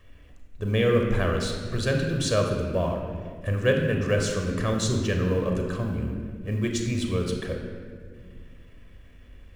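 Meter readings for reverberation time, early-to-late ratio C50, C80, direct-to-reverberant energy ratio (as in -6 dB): 1.9 s, 4.0 dB, 5.0 dB, 2.5 dB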